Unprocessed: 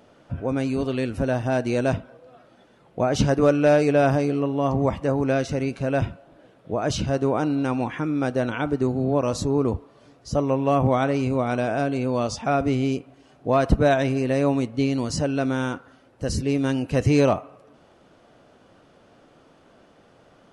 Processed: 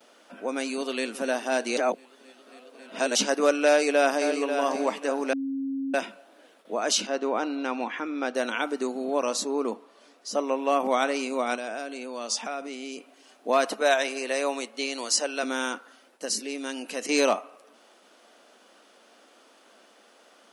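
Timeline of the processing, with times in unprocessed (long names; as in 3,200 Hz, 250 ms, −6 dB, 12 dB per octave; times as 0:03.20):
0:00.70–0:01.10: delay throw 270 ms, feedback 80%, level −16 dB
0:01.77–0:03.15: reverse
0:03.67–0:04.35: delay throw 540 ms, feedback 30%, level −8 dB
0:05.33–0:05.94: beep over 271 Hz −19.5 dBFS
0:07.07–0:08.35: high-frequency loss of the air 140 metres
0:09.25–0:10.80: high-shelf EQ 4,600 Hz −6 dB
0:11.55–0:12.98: downward compressor 4 to 1, threshold −28 dBFS
0:13.67–0:15.43: high-pass filter 380 Hz
0:16.25–0:17.09: downward compressor 2 to 1, threshold −27 dBFS
whole clip: elliptic high-pass filter 210 Hz, stop band 40 dB; noise gate with hold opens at −47 dBFS; spectral tilt +3.5 dB per octave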